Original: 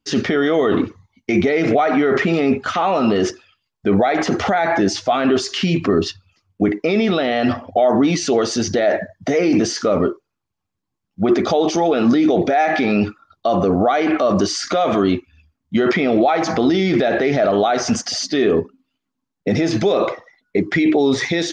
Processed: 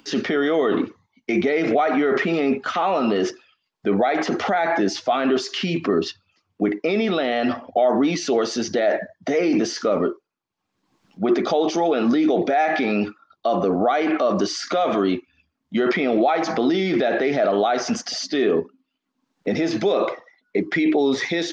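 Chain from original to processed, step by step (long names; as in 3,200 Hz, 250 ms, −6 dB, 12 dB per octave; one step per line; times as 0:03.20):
three-way crossover with the lows and the highs turned down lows −17 dB, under 170 Hz, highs −14 dB, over 6,700 Hz
upward compression, threshold −34 dBFS
level −3 dB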